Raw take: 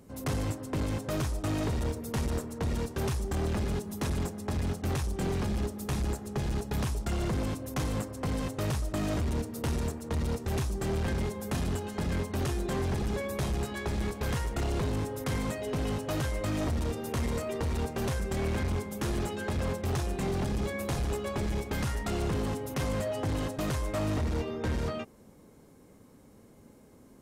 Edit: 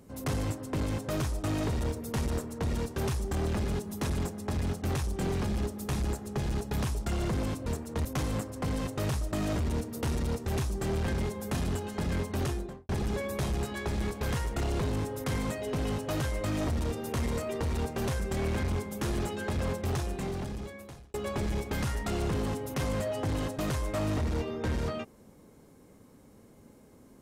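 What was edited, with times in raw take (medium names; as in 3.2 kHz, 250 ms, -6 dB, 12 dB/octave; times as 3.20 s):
9.81–10.20 s: move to 7.66 s
12.43–12.89 s: studio fade out
19.87–21.14 s: fade out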